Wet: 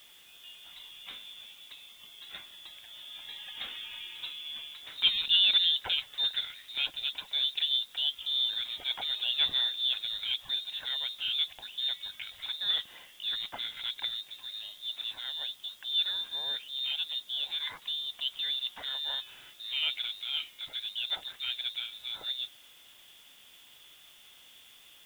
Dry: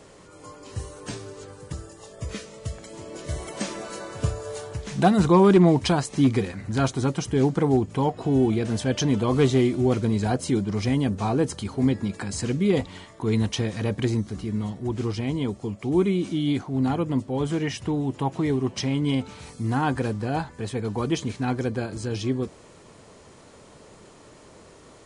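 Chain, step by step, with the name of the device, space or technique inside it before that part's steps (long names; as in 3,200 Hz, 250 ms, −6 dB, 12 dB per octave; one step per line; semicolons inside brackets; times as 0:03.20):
scrambled radio voice (band-pass filter 350–2,600 Hz; voice inversion scrambler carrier 3,900 Hz; white noise bed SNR 26 dB)
level −5 dB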